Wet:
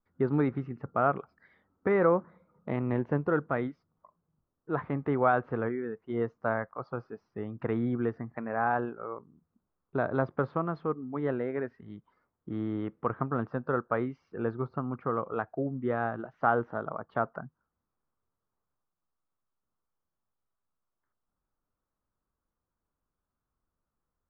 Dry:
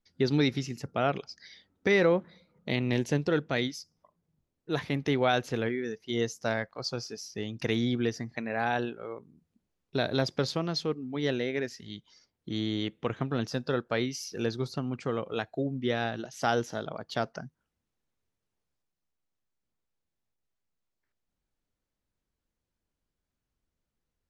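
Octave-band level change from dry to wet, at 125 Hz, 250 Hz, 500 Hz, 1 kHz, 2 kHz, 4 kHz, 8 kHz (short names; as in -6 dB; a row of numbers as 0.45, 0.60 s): -1.5 dB, -1.0 dB, -0.5 dB, +3.5 dB, -3.0 dB, under -25 dB, under -35 dB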